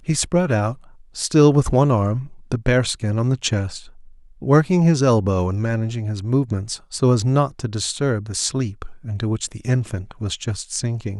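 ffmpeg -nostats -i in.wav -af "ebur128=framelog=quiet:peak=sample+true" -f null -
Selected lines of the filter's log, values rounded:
Integrated loudness:
  I:         -20.3 LUFS
  Threshold: -30.7 LUFS
Loudness range:
  LRA:         4.7 LU
  Threshold: -40.6 LUFS
  LRA low:   -23.9 LUFS
  LRA high:  -19.2 LUFS
Sample peak:
  Peak:       -2.3 dBFS
True peak:
  Peak:       -2.3 dBFS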